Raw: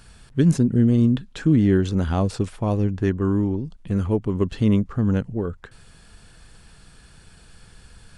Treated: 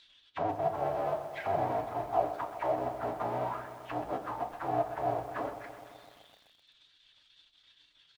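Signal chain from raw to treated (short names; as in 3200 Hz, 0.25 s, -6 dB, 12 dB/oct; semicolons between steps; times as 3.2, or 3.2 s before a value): half-waves squared off; reverb removal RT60 1.2 s; HPF 59 Hz 6 dB/oct; low shelf 120 Hz +8 dB; limiter -16.5 dBFS, peak gain reduction 11.5 dB; harmoniser -3 st -15 dB, +5 st -11 dB; auto-wah 720–4100 Hz, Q 8.3, down, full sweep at -18.5 dBFS; formant-preserving pitch shift -8.5 st; air absorption 52 m; reverb RT60 0.35 s, pre-delay 3 ms, DRR 4.5 dB; lo-fi delay 0.127 s, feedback 80%, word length 10-bit, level -12 dB; gain +6.5 dB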